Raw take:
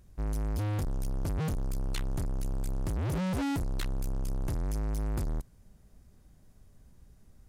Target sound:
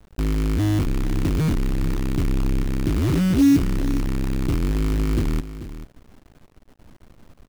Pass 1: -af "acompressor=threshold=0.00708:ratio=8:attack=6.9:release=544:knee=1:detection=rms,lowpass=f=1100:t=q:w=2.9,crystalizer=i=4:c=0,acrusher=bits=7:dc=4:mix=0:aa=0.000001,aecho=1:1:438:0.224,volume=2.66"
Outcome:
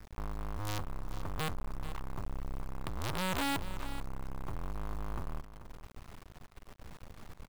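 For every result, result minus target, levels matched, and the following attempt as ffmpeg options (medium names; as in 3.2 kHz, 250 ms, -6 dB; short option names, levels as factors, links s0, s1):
compression: peak gain reduction +13 dB; 250 Hz band -5.5 dB
-af "lowpass=f=1100:t=q:w=2.9,crystalizer=i=4:c=0,acrusher=bits=7:dc=4:mix=0:aa=0.000001,aecho=1:1:438:0.224,volume=2.66"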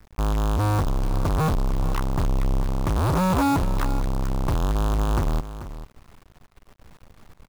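250 Hz band -4.0 dB
-af "lowpass=f=310:t=q:w=2.9,crystalizer=i=4:c=0,acrusher=bits=7:dc=4:mix=0:aa=0.000001,aecho=1:1:438:0.224,volume=2.66"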